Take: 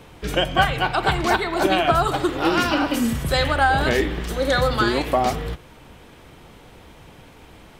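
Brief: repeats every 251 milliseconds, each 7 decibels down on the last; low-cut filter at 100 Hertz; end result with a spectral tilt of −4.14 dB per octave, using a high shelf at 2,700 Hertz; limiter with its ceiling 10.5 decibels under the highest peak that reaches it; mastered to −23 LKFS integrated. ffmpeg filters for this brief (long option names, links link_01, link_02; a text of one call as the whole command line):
ffmpeg -i in.wav -af "highpass=100,highshelf=frequency=2700:gain=9,alimiter=limit=-12dB:level=0:latency=1,aecho=1:1:251|502|753|1004|1255:0.447|0.201|0.0905|0.0407|0.0183,volume=-1.5dB" out.wav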